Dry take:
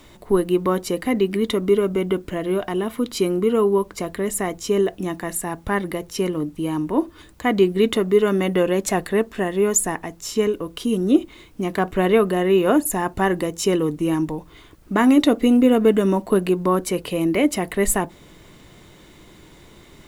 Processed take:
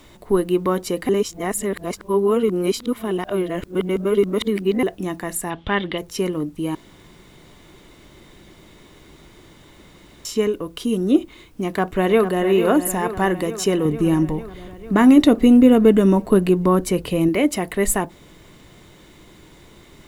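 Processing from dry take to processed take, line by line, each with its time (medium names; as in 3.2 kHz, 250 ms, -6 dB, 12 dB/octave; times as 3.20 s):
1.09–4.83 s: reverse
5.50–5.98 s: resonant low-pass 3.3 kHz, resonance Q 7.3
6.75–10.25 s: room tone
11.61–12.43 s: echo throw 450 ms, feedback 70%, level -9.5 dB
13.85–17.29 s: bass shelf 200 Hz +10 dB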